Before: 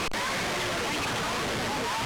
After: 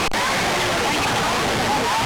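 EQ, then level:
parametric band 800 Hz +6.5 dB 0.23 octaves
+8.5 dB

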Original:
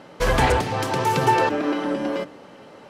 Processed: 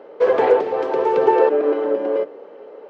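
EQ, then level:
high-pass with resonance 440 Hz, resonance Q 4.9
head-to-tape spacing loss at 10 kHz 34 dB
0.0 dB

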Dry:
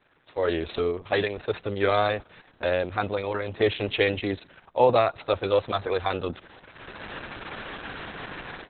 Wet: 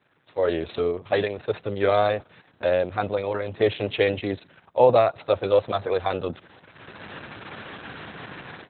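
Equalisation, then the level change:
high-pass filter 84 Hz
dynamic equaliser 590 Hz, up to +6 dB, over −35 dBFS, Q 1.5
parametric band 130 Hz +5 dB 1.6 octaves
−2.0 dB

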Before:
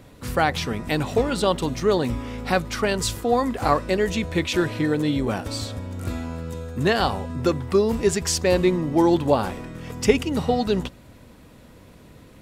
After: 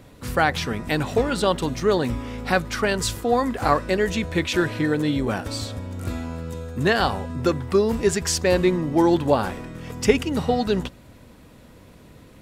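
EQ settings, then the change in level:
dynamic equaliser 1,600 Hz, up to +4 dB, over −42 dBFS, Q 2.9
0.0 dB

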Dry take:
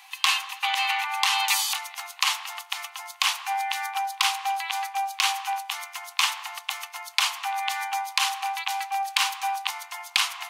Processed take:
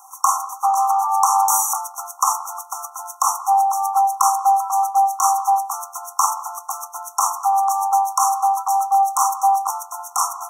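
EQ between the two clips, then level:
dynamic equaliser 860 Hz, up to +4 dB, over −35 dBFS, Q 0.84
linear-phase brick-wall band-stop 1,400–5,500 Hz
+8.5 dB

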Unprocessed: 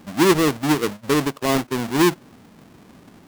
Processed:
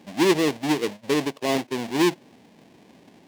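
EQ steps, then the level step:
high-pass filter 340 Hz 6 dB per octave
parametric band 1,300 Hz −13.5 dB 0.49 octaves
high-shelf EQ 8,100 Hz −12 dB
0.0 dB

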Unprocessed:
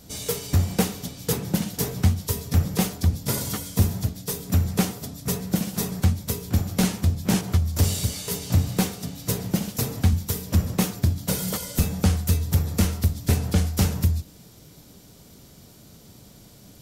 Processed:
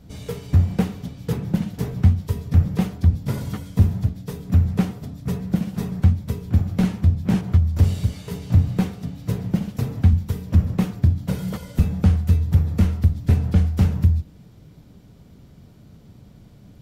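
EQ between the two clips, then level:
bass and treble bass +8 dB, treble −14 dB
−3.0 dB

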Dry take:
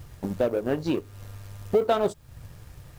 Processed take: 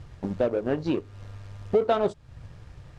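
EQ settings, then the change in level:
high-frequency loss of the air 77 metres
high-shelf EQ 9,900 Hz −7 dB
0.0 dB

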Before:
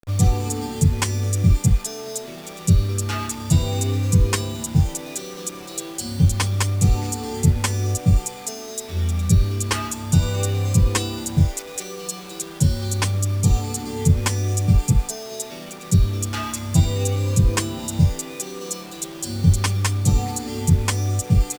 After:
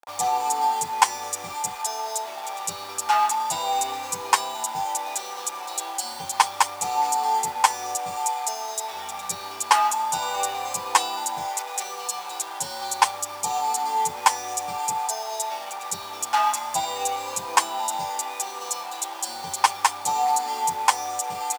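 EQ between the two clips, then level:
high-pass with resonance 850 Hz, resonance Q 8
0.0 dB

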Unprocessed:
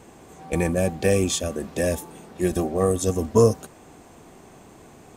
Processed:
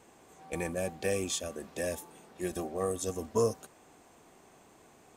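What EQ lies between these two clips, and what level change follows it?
low-shelf EQ 310 Hz −9 dB
−8.0 dB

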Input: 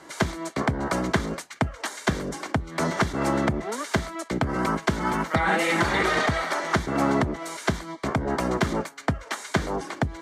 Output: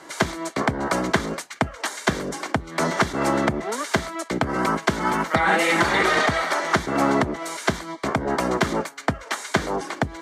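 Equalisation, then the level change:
low-shelf EQ 150 Hz −9.5 dB
+4.0 dB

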